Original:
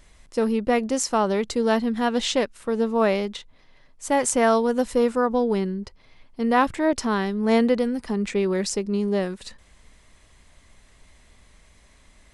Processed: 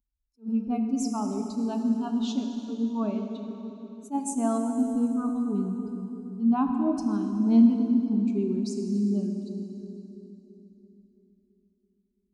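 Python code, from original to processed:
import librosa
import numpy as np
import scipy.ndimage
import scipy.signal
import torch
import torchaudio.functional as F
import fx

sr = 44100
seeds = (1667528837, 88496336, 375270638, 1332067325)

y = fx.bin_expand(x, sr, power=2.0)
y = scipy.signal.sosfilt(scipy.signal.butter(2, 41.0, 'highpass', fs=sr, output='sos'), y)
y = fx.peak_eq(y, sr, hz=220.0, db=14.0, octaves=1.1)
y = fx.fixed_phaser(y, sr, hz=510.0, stages=6)
y = fx.echo_bbd(y, sr, ms=333, stages=1024, feedback_pct=57, wet_db=-7.0)
y = fx.rev_plate(y, sr, seeds[0], rt60_s=3.1, hf_ratio=0.9, predelay_ms=0, drr_db=4.0)
y = fx.attack_slew(y, sr, db_per_s=340.0)
y = y * librosa.db_to_amplitude(-8.0)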